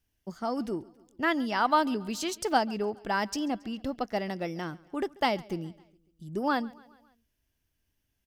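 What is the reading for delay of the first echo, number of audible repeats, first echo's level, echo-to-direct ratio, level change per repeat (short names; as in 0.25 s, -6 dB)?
0.138 s, 3, -23.5 dB, -22.0 dB, -5.0 dB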